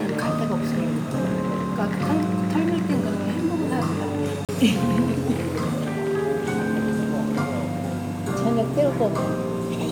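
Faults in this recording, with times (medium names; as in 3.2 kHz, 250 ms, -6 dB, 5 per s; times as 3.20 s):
4.45–4.49 s: dropout 37 ms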